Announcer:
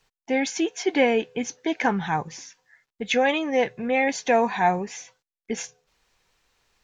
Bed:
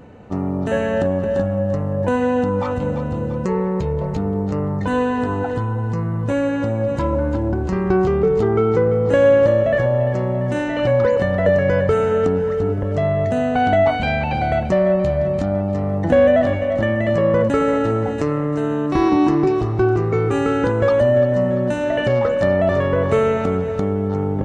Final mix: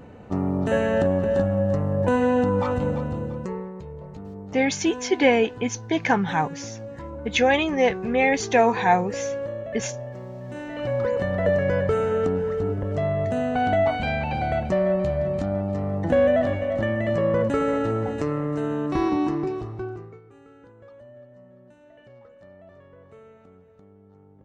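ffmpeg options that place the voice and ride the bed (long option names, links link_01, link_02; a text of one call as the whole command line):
ffmpeg -i stem1.wav -i stem2.wav -filter_complex "[0:a]adelay=4250,volume=2dB[link_01];[1:a]volume=9dB,afade=type=out:start_time=2.79:duration=0.94:silence=0.188365,afade=type=in:start_time=10.41:duration=0.99:silence=0.281838,afade=type=out:start_time=18.87:duration=1.34:silence=0.0473151[link_02];[link_01][link_02]amix=inputs=2:normalize=0" out.wav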